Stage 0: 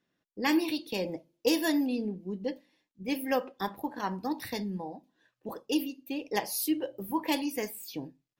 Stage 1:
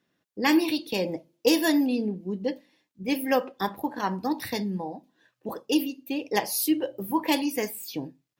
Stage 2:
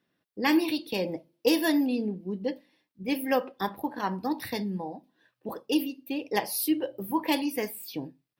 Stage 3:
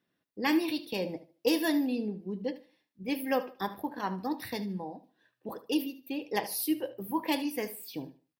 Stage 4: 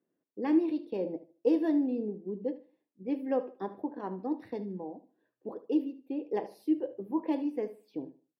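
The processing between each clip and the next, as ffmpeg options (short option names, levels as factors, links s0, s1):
-af "highpass=51,volume=1.78"
-af "equalizer=f=6800:w=3.4:g=-10,volume=0.794"
-af "aecho=1:1:75|150|225:0.168|0.0453|0.0122,volume=0.668"
-af "bandpass=f=380:t=q:w=1.4:csg=0,volume=1.41"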